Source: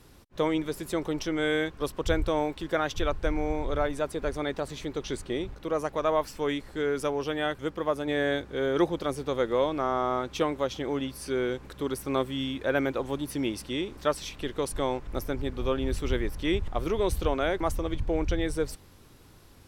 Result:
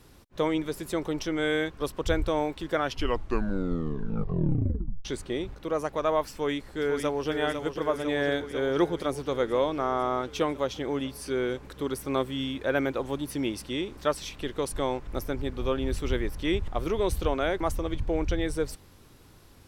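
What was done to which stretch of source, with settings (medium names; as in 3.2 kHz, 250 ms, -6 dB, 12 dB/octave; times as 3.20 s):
2.72 s: tape stop 2.33 s
6.31–7.29 s: echo throw 500 ms, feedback 75%, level -7 dB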